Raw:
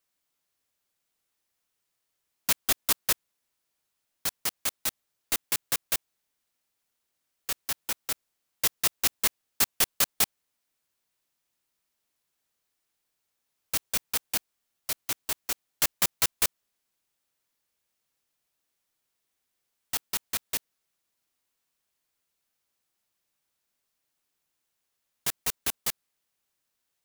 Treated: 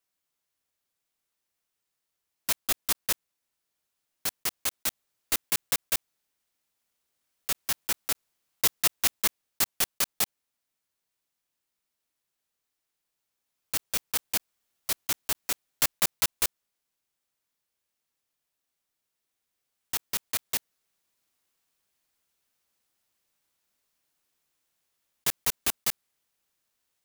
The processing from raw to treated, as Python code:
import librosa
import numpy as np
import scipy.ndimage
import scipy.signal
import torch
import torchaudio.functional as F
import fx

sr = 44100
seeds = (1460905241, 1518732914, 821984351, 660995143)

y = fx.block_float(x, sr, bits=3)
y = fx.rider(y, sr, range_db=10, speed_s=2.0)